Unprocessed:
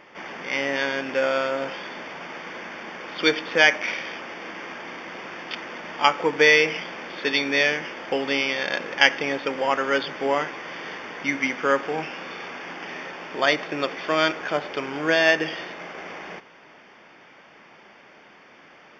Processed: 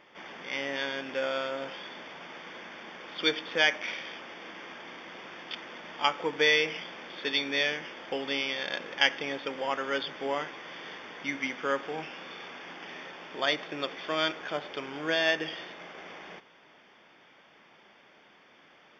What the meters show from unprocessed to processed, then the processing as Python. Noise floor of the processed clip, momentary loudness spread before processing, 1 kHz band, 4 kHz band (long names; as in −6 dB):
−59 dBFS, 17 LU, −8.5 dB, −3.5 dB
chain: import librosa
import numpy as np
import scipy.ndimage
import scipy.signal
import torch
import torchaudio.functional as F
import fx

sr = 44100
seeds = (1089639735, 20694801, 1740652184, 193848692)

y = fx.peak_eq(x, sr, hz=3400.0, db=8.0, octaves=0.24)
y = y * 10.0 ** (-8.5 / 20.0)